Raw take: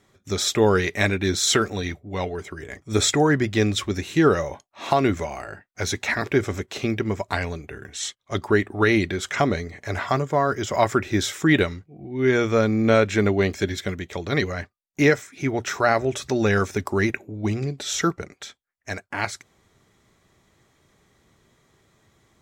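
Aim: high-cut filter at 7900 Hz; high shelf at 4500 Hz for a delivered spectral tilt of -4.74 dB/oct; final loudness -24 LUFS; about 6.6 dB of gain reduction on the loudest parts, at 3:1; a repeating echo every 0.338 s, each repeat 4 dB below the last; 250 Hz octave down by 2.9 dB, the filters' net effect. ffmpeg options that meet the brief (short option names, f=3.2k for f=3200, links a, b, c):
-af "lowpass=7.9k,equalizer=f=250:t=o:g=-4,highshelf=f=4.5k:g=-5.5,acompressor=threshold=-23dB:ratio=3,aecho=1:1:338|676|1014|1352|1690|2028|2366|2704|3042:0.631|0.398|0.25|0.158|0.0994|0.0626|0.0394|0.0249|0.0157,volume=2.5dB"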